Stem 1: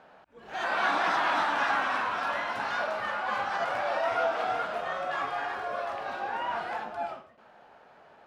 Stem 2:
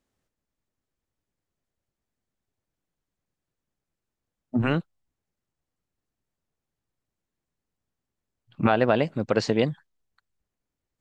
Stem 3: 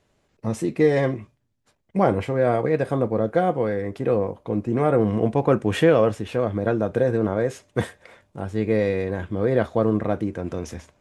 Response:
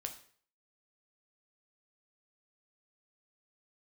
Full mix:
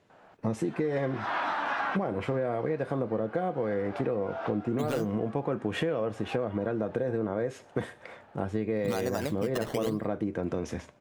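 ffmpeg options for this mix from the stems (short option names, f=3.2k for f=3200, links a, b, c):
-filter_complex "[0:a]adelay=100,volume=-1.5dB,asplit=2[a][b];[b]volume=-18dB[c];[1:a]acompressor=threshold=-32dB:ratio=2,acrusher=samples=13:mix=1:aa=0.000001:lfo=1:lforange=13:lforate=0.99,adelay=250,volume=3dB,asplit=2[d][e];[e]volume=-11.5dB[f];[2:a]highpass=110,volume=1.5dB,asplit=3[g][h][i];[h]volume=-16dB[j];[i]apad=whole_len=368920[k];[a][k]sidechaincompress=threshold=-34dB:ratio=8:attack=16:release=210[l];[l][g]amix=inputs=2:normalize=0,lowpass=f=2.9k:p=1,alimiter=limit=-14dB:level=0:latency=1:release=207,volume=0dB[m];[3:a]atrim=start_sample=2205[n];[c][f][j]amix=inputs=3:normalize=0[o];[o][n]afir=irnorm=-1:irlink=0[p];[d][m][p]amix=inputs=3:normalize=0,acompressor=threshold=-26dB:ratio=6"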